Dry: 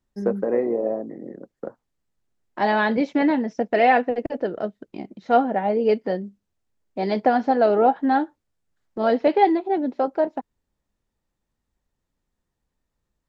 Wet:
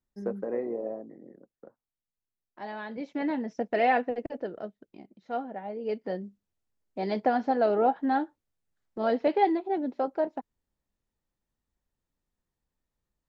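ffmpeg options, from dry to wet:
ffmpeg -i in.wav -af "volume=10dB,afade=type=out:start_time=0.77:duration=0.9:silence=0.375837,afade=type=in:start_time=2.89:duration=0.65:silence=0.281838,afade=type=out:start_time=4.06:duration=0.99:silence=0.398107,afade=type=in:start_time=5.8:duration=0.43:silence=0.375837" out.wav

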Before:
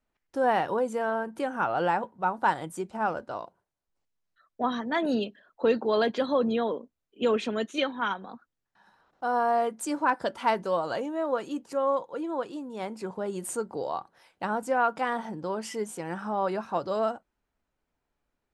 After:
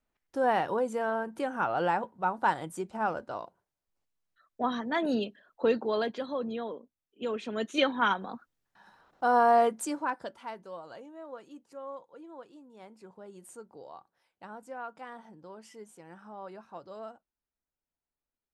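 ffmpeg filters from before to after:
ffmpeg -i in.wav -af "volume=9.5dB,afade=type=out:start_time=5.67:duration=0.56:silence=0.473151,afade=type=in:start_time=7.44:duration=0.45:silence=0.266073,afade=type=out:start_time=9.66:duration=0.31:silence=0.375837,afade=type=out:start_time=9.97:duration=0.5:silence=0.316228" out.wav

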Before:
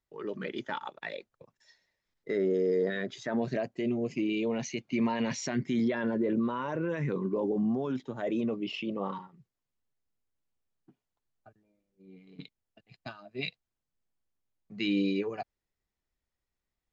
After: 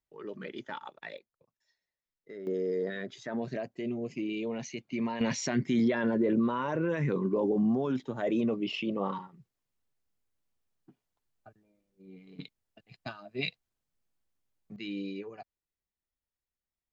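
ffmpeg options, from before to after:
ffmpeg -i in.wav -af "asetnsamples=nb_out_samples=441:pad=0,asendcmd='1.18 volume volume -14dB;2.47 volume volume -4dB;5.21 volume volume 2dB;14.76 volume volume -9dB',volume=-4.5dB" out.wav

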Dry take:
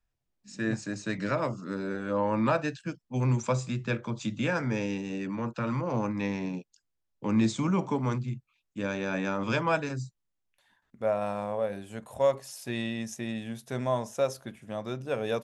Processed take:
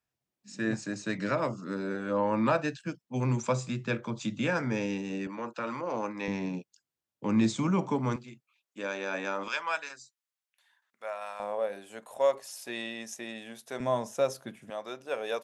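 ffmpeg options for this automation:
ffmpeg -i in.wav -af "asetnsamples=nb_out_samples=441:pad=0,asendcmd='5.27 highpass f 350;6.28 highpass f 110;8.16 highpass f 400;9.48 highpass f 1100;11.4 highpass f 390;13.8 highpass f 150;14.7 highpass f 480',highpass=130" out.wav

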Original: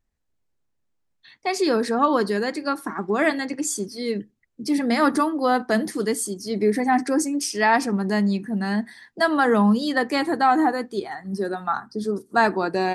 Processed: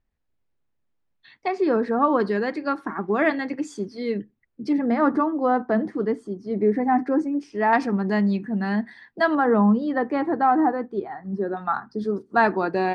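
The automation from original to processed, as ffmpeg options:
ffmpeg -i in.wav -af "asetnsamples=nb_out_samples=441:pad=0,asendcmd='1.48 lowpass f 1600;2.2 lowpass f 2700;4.73 lowpass f 1300;7.73 lowpass f 3000;9.35 lowpass f 1300;11.57 lowpass f 2900',lowpass=3600" out.wav

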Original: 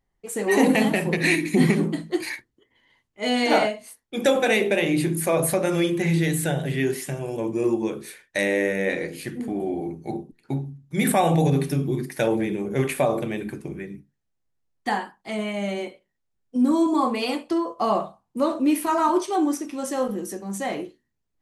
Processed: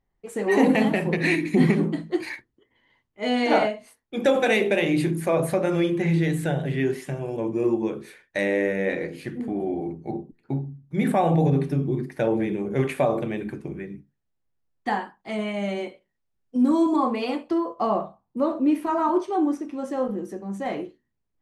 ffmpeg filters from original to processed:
ffmpeg -i in.wav -af "asetnsamples=nb_out_samples=441:pad=0,asendcmd='4.34 lowpass f 4800;5.11 lowpass f 2100;9.92 lowpass f 1200;12.36 lowpass f 2500;15.3 lowpass f 4100;16.96 lowpass f 1900;17.87 lowpass f 1100;20.66 lowpass f 2300',lowpass=frequency=2400:poles=1" out.wav

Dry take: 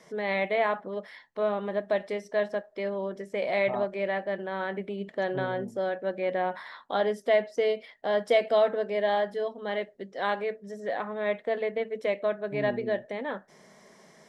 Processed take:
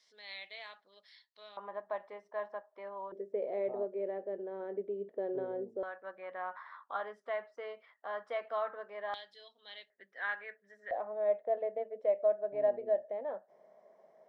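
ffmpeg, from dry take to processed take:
ffmpeg -i in.wav -af "asetnsamples=nb_out_samples=441:pad=0,asendcmd='1.57 bandpass f 1000;3.12 bandpass f 430;5.83 bandpass f 1200;9.14 bandpass f 3900;9.9 bandpass f 1700;10.91 bandpass f 630',bandpass=frequency=4300:width_type=q:width=3.8:csg=0" out.wav

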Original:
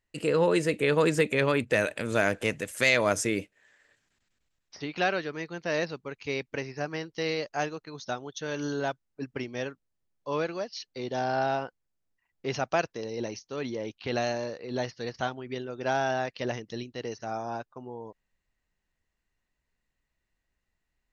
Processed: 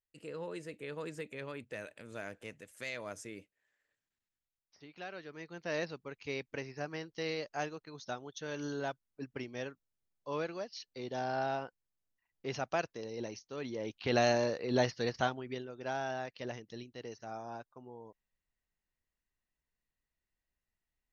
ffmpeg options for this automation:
ffmpeg -i in.wav -af "volume=2dB,afade=type=in:start_time=5.09:duration=0.64:silence=0.266073,afade=type=in:start_time=13.69:duration=0.65:silence=0.354813,afade=type=out:start_time=14.93:duration=0.8:silence=0.266073" out.wav

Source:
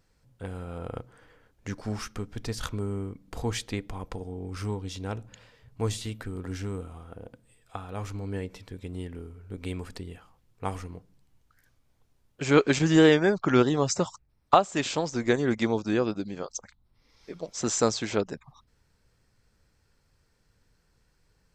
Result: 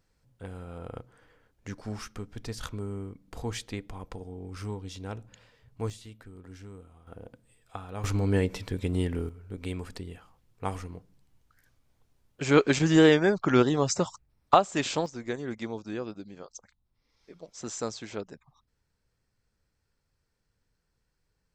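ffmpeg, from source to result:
ffmpeg -i in.wav -af "asetnsamples=nb_out_samples=441:pad=0,asendcmd='5.9 volume volume -12dB;7.07 volume volume -2dB;8.04 volume volume 8.5dB;9.29 volume volume -0.5dB;15.06 volume volume -9.5dB',volume=-4dB" out.wav

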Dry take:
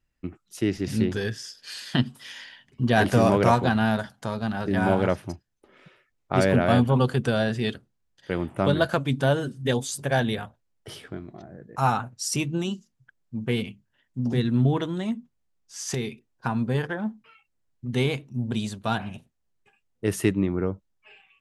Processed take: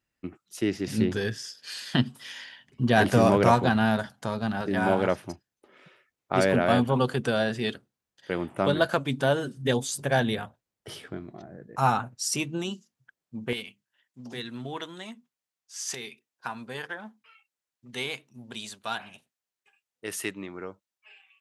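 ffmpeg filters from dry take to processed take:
ffmpeg -i in.wav -af "asetnsamples=nb_out_samples=441:pad=0,asendcmd='0.98 highpass f 88;4.61 highpass f 240;9.57 highpass f 110;12.15 highpass f 320;13.53 highpass f 1400',highpass=frequency=210:poles=1" out.wav

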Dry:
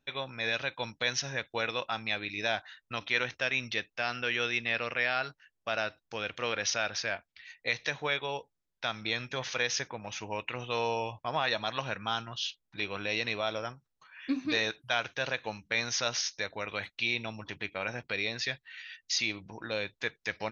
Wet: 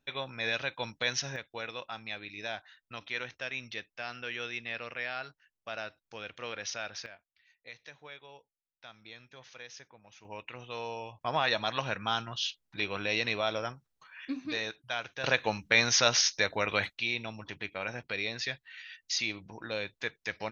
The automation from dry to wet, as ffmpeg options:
ffmpeg -i in.wav -af "asetnsamples=nb_out_samples=441:pad=0,asendcmd='1.36 volume volume -7dB;7.06 volume volume -17dB;10.25 volume volume -7.5dB;11.21 volume volume 1.5dB;14.25 volume volume -5dB;15.24 volume volume 6.5dB;16.93 volume volume -1.5dB',volume=-0.5dB" out.wav

